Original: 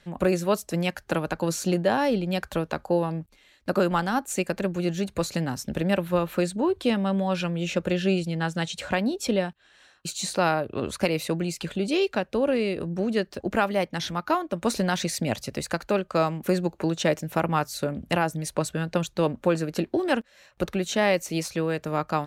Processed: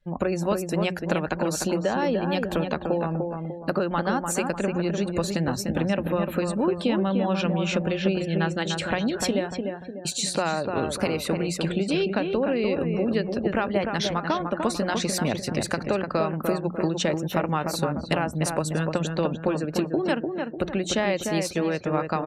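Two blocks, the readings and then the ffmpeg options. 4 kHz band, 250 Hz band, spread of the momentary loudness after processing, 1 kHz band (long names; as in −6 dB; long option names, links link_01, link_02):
+1.5 dB, +1.0 dB, 3 LU, −0.5 dB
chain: -filter_complex "[0:a]bandreject=frequency=6500:width=29,acompressor=threshold=-26dB:ratio=5,bandreject=frequency=60:width_type=h:width=6,bandreject=frequency=120:width_type=h:width=6,bandreject=frequency=180:width_type=h:width=6,asplit=2[link_01][link_02];[link_02]adelay=298,lowpass=frequency=2300:poles=1,volume=-4.5dB,asplit=2[link_03][link_04];[link_04]adelay=298,lowpass=frequency=2300:poles=1,volume=0.43,asplit=2[link_05][link_06];[link_06]adelay=298,lowpass=frequency=2300:poles=1,volume=0.43,asplit=2[link_07][link_08];[link_08]adelay=298,lowpass=frequency=2300:poles=1,volume=0.43,asplit=2[link_09][link_10];[link_10]adelay=298,lowpass=frequency=2300:poles=1,volume=0.43[link_11];[link_03][link_05][link_07][link_09][link_11]amix=inputs=5:normalize=0[link_12];[link_01][link_12]amix=inputs=2:normalize=0,afftdn=noise_reduction=27:noise_floor=-49,volume=4.5dB"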